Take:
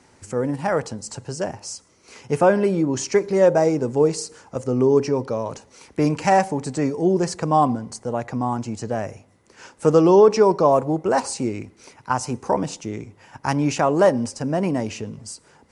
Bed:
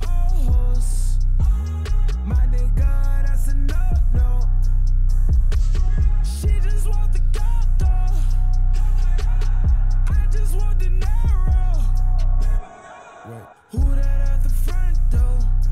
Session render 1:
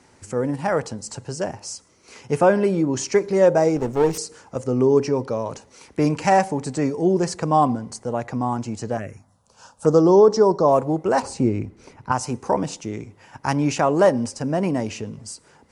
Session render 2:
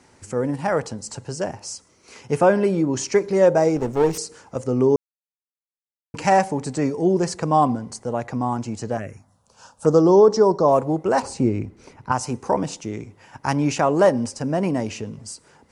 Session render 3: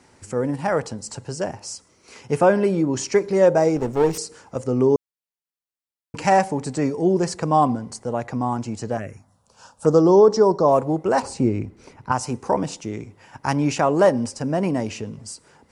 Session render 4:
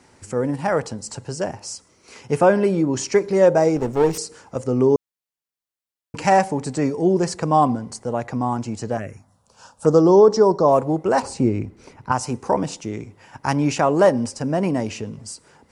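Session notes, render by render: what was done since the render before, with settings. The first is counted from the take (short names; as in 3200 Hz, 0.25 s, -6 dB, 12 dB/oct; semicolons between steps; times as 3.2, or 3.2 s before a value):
3.76–4.18 minimum comb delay 0.34 ms; 8.97–10.68 envelope phaser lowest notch 310 Hz, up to 2500 Hz, full sweep at -18 dBFS; 11.22–12.12 tilt -2.5 dB/oct
4.96–6.14 mute
notch 6300 Hz, Q 29
gain +1 dB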